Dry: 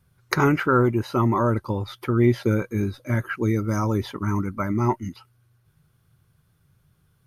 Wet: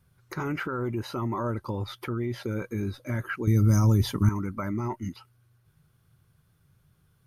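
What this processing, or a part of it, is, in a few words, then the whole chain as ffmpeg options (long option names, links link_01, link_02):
stacked limiters: -filter_complex "[0:a]alimiter=limit=-10.5dB:level=0:latency=1:release=248,alimiter=limit=-14.5dB:level=0:latency=1:release=124,alimiter=limit=-20.5dB:level=0:latency=1:release=38,asettb=1/sr,asplit=3[link_01][link_02][link_03];[link_01]atrim=end=3.474[link_04];[link_02]atrim=start=3.47:end=4.29,asetpts=PTS-STARTPTS,afade=type=in:duration=0.004:curve=qsin,afade=type=out:start_time=0.816:duration=0.004:curve=qsin,bass=frequency=250:gain=13,treble=frequency=4000:gain=12[link_05];[link_03]atrim=start=4.286[link_06];[link_04][link_05]acrossfade=duration=0.004:curve1=hsin:curve2=qsin[link_07];[link_07][link_06]acrossfade=duration=0.004:curve1=qsin:curve2=hsin,volume=-1.5dB"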